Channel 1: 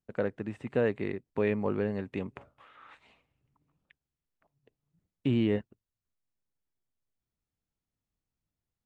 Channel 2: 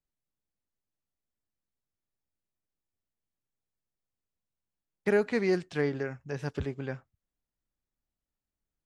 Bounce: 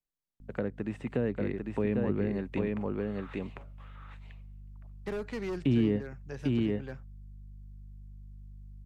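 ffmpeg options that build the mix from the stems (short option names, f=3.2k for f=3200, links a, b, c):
-filter_complex "[0:a]aeval=exprs='val(0)+0.00316*(sin(2*PI*50*n/s)+sin(2*PI*2*50*n/s)/2+sin(2*PI*3*50*n/s)/3+sin(2*PI*4*50*n/s)/4+sin(2*PI*5*50*n/s)/5)':c=same,adelay=400,volume=2.5dB,asplit=2[a][b];[b]volume=-3.5dB[c];[1:a]asoftclip=type=hard:threshold=-25dB,volume=-5.5dB[d];[c]aecho=0:1:798:1[e];[a][d][e]amix=inputs=3:normalize=0,equalizer=f=74:t=o:w=0.38:g=-11.5,acrossover=split=320[f][g];[g]acompressor=threshold=-35dB:ratio=6[h];[f][h]amix=inputs=2:normalize=0"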